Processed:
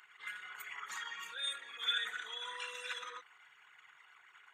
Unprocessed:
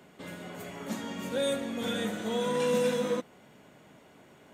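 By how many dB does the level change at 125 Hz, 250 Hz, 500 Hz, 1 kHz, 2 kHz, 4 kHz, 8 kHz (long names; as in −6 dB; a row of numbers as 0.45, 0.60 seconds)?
below −35 dB, below −40 dB, −28.5 dB, −8.0 dB, 0.0 dB, +1.0 dB, −8.5 dB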